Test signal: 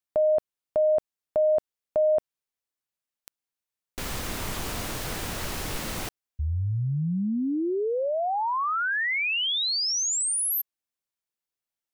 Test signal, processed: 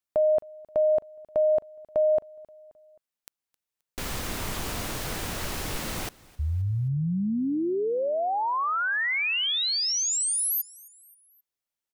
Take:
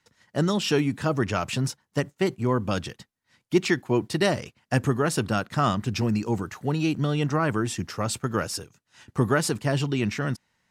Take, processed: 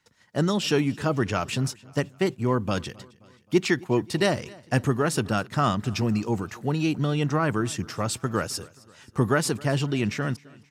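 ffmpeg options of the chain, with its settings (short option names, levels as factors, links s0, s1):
-af "aecho=1:1:264|528|792:0.0668|0.0354|0.0188"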